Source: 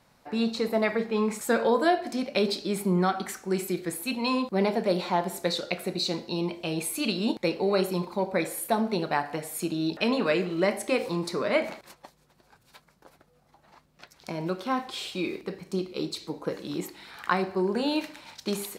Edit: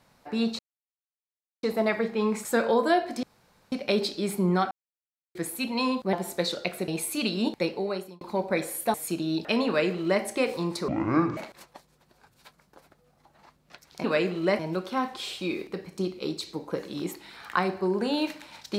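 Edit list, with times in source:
0.59 s: insert silence 1.04 s
2.19 s: insert room tone 0.49 s
3.18–3.82 s: mute
4.60–5.19 s: delete
5.94–6.71 s: delete
7.42–8.04 s: fade out
8.77–9.46 s: delete
10.19–10.74 s: copy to 14.33 s
11.40–11.66 s: speed 53%

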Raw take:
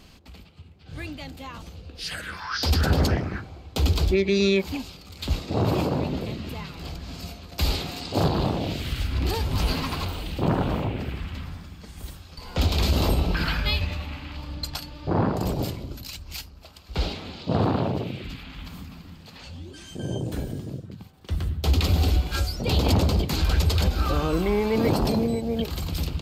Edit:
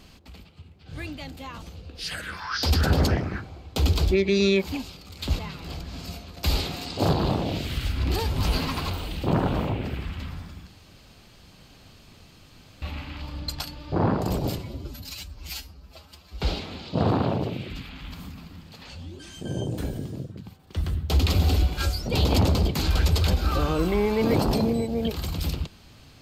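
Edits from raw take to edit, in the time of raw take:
5.39–6.54 s: delete
11.82–13.97 s: room tone
15.73–16.95 s: stretch 1.5×

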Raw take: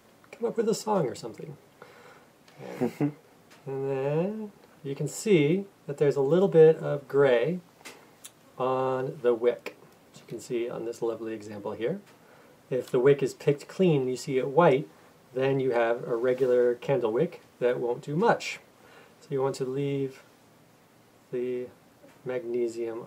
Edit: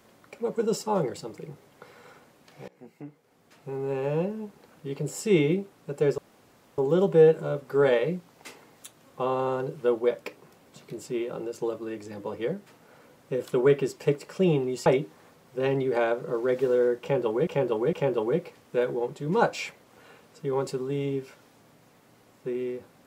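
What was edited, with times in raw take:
2.68–3.74 s: fade in quadratic, from -23 dB
6.18 s: insert room tone 0.60 s
14.26–14.65 s: delete
16.80–17.26 s: loop, 3 plays

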